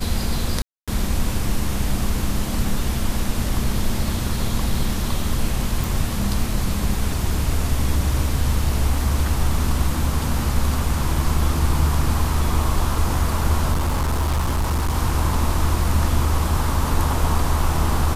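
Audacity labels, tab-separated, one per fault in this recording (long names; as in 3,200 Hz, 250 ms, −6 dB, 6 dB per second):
0.620000	0.880000	drop-out 256 ms
5.840000	5.840000	click
13.720000	14.980000	clipping −16.5 dBFS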